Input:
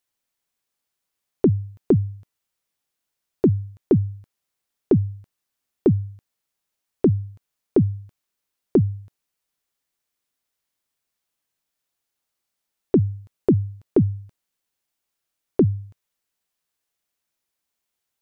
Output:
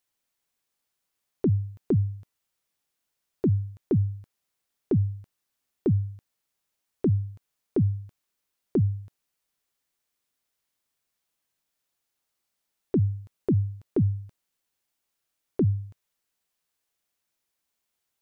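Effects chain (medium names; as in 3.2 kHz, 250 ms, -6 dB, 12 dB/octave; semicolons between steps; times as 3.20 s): peak limiter -17 dBFS, peak gain reduction 9 dB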